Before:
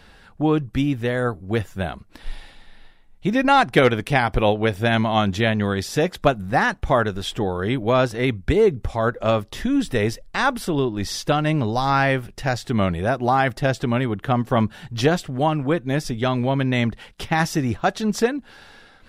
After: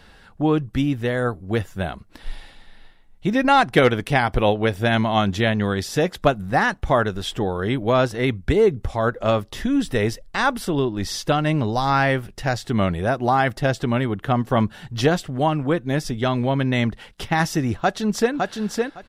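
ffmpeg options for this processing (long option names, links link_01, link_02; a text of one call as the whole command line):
ffmpeg -i in.wav -filter_complex "[0:a]asplit=2[link_01][link_02];[link_02]afade=type=in:start_time=17.77:duration=0.01,afade=type=out:start_time=18.33:duration=0.01,aecho=0:1:560|1120|1680:0.668344|0.100252|0.0150377[link_03];[link_01][link_03]amix=inputs=2:normalize=0,bandreject=frequency=2400:width=26" out.wav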